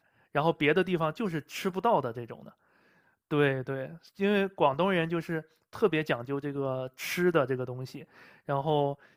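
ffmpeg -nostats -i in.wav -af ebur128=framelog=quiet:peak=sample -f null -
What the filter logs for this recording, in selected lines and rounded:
Integrated loudness:
  I:         -29.4 LUFS
  Threshold: -40.3 LUFS
Loudness range:
  LRA:         2.1 LU
  Threshold: -50.4 LUFS
  LRA low:   -31.5 LUFS
  LRA high:  -29.4 LUFS
Sample peak:
  Peak:      -10.5 dBFS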